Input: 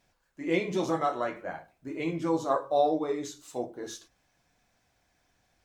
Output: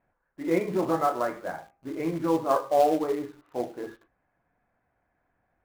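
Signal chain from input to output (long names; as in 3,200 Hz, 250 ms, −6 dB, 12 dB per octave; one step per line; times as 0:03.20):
low-pass filter 1,800 Hz 24 dB per octave
low-shelf EQ 180 Hz −4 dB
hum removal 401.3 Hz, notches 3
in parallel at −6 dB: log-companded quantiser 4 bits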